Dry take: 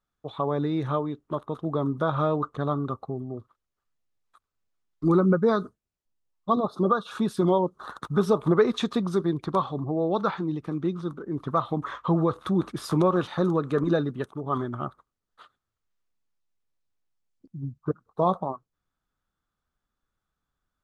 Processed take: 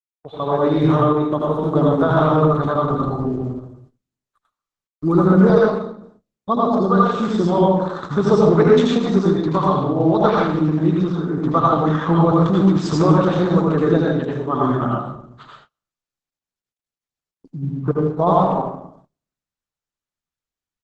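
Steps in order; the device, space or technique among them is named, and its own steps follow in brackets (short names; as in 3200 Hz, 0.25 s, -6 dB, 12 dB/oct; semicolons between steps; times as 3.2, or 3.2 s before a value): speakerphone in a meeting room (reverb RT60 0.70 s, pre-delay 75 ms, DRR -3.5 dB; speakerphone echo 0.14 s, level -19 dB; AGC gain up to 9 dB; gate -45 dBFS, range -28 dB; gain -1 dB; Opus 12 kbps 48000 Hz)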